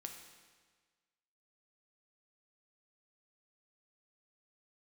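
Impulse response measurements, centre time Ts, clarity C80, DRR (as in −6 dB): 35 ms, 7.5 dB, 3.5 dB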